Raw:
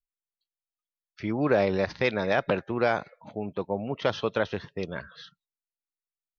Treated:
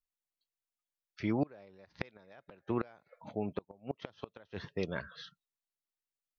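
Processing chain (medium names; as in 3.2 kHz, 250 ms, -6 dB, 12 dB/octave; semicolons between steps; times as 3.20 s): inverted gate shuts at -18 dBFS, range -29 dB; trim -2.5 dB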